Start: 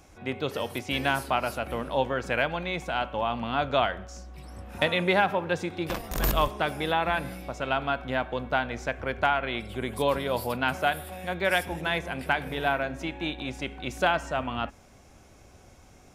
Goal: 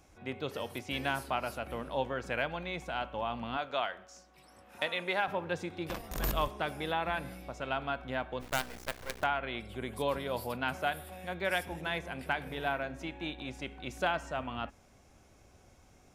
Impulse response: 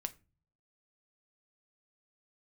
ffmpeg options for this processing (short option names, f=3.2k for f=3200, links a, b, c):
-filter_complex "[0:a]asettb=1/sr,asplit=3[a][b][c];[a]atrim=end=3.574[d];[b]atrim=start=3.57:end=5.28,asetpts=PTS-STARTPTS,afade=t=in:d=0.004:c=qsin,afade=t=out:st=1.706:d=0.004:c=qsin,highpass=f=570:p=1[e];[c]atrim=start=5.276[f];[d][e]acrossfade=d=0.004:c1=hsin:c2=qsin[g];[g][f]acrossfade=d=0.004:c1=qsin:c2=hsin,asplit=3[h][i][j];[h]afade=t=out:st=8.4:d=0.02[k];[i]acrusher=bits=4:dc=4:mix=0:aa=0.000001,afade=t=in:st=8.4:d=0.02,afade=t=out:st=9.22:d=0.02[l];[j]afade=t=in:st=9.22:d=0.02[m];[k][l][m]amix=inputs=3:normalize=0,volume=-7dB"